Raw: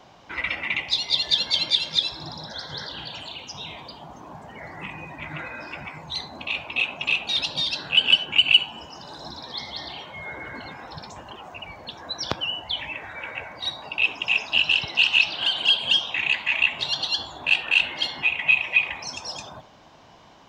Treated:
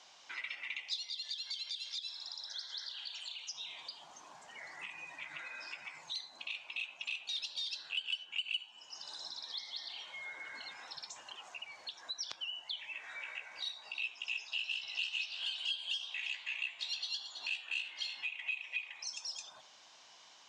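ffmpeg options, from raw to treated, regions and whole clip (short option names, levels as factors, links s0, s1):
-filter_complex "[0:a]asettb=1/sr,asplit=3[s0][s1][s2];[s0]atrim=end=1.084[s3];[s1]atrim=start=1.08:end=3.52,asetpts=PTS-STARTPTS,afade=t=in:d=0.004:c=qsin,afade=t=out:st=2.436:d=0.004:c=qsin,highpass=f=980:p=1,acompressor=threshold=0.0447:ratio=4:attack=3.2:release=140:knee=1:detection=peak[s4];[s2]atrim=start=3.516[s5];[s3][s4]acrossfade=d=0.004:c1=hsin:c2=qsin[s6];[s6][s5]acrossfade=d=0.004:c1=qsin:c2=hsin,asettb=1/sr,asplit=3[s7][s8][s9];[s7]atrim=end=12.934[s10];[s8]atrim=start=12.93:end=18.24,asetpts=PTS-STARTPTS,afade=t=in:d=0.004:c=qsin,afade=t=out:st=5.306:d=0.004:c=qsin,asplit=2[s11][s12];[s12]adelay=16,volume=0.596[s13];[s11][s13]amix=inputs=2:normalize=0,atrim=end_sample=234171,aecho=1:1:325:0.2,atrim=end_sample=234171[s14];[s9]atrim=start=18.236[s15];[s10][s14]acrossfade=d=0.004:c1=hsin:c2=qsin[s16];[s16][s15]acrossfade=d=0.004:c1=qsin:c2=hsin,lowpass=f=8300:w=0.5412,lowpass=f=8300:w=1.3066,aderivative,acompressor=threshold=0.00355:ratio=2.5,volume=1.78"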